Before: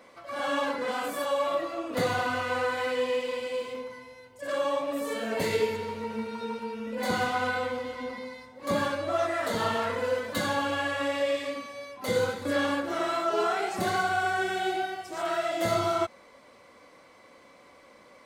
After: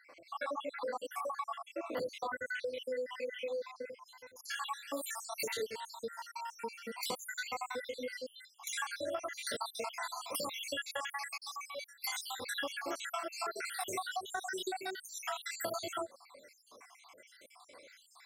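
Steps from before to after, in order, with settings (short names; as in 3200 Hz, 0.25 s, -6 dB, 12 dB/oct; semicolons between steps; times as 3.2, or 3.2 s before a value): random spectral dropouts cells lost 73%; tone controls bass -14 dB, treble -3 dB, from 4.05 s treble +10 dB; compressor 6:1, threshold -36 dBFS, peak gain reduction 12.5 dB; gain +1 dB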